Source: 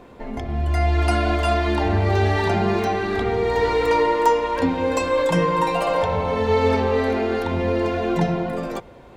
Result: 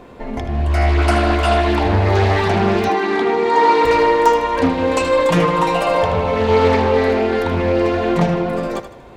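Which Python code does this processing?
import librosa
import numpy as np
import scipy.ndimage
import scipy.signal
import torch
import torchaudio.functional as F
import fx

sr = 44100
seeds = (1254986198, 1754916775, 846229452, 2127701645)

p1 = fx.cabinet(x, sr, low_hz=210.0, low_slope=24, high_hz=9500.0, hz=(320.0, 600.0, 930.0), db=(6, -9, 9), at=(2.89, 3.85))
p2 = p1 + fx.echo_thinned(p1, sr, ms=78, feedback_pct=40, hz=420.0, wet_db=-10.0, dry=0)
p3 = fx.doppler_dist(p2, sr, depth_ms=0.3)
y = p3 * 10.0 ** (4.5 / 20.0)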